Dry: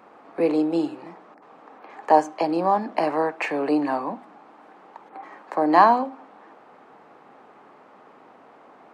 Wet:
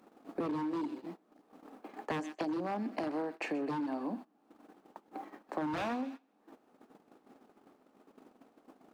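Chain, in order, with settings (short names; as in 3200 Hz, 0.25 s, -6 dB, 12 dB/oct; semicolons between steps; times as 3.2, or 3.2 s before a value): ten-band EQ 125 Hz -10 dB, 250 Hz +5 dB, 500 Hz -5 dB, 1000 Hz -10 dB, 2000 Hz -8 dB; wavefolder -22 dBFS; HPF 96 Hz 12 dB/oct; bit-crush 11-bit; upward compressor, threshold -35 dBFS; high shelf 3100 Hz -8 dB; thin delay 0.128 s, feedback 44%, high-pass 1700 Hz, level -11 dB; compressor 16:1, threshold -32 dBFS, peak gain reduction 8.5 dB; gate -43 dBFS, range -22 dB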